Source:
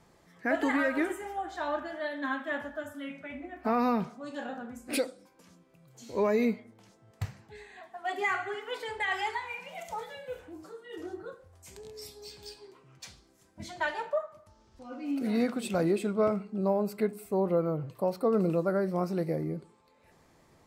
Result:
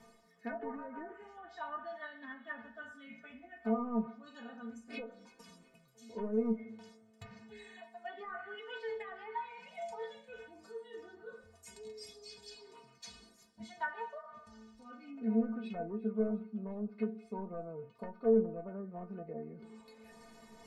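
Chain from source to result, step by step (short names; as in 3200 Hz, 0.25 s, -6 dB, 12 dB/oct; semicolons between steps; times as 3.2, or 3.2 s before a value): wavefolder -21 dBFS; treble ducked by the level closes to 1400 Hz, closed at -24 dBFS; reverse; upward compressor, threshold -34 dBFS; reverse; treble ducked by the level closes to 960 Hz, closed at -25.5 dBFS; metallic resonator 220 Hz, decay 0.24 s, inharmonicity 0.008; on a send: thin delay 0.354 s, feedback 58%, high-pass 2000 Hz, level -22 dB; on the sum: gain +4 dB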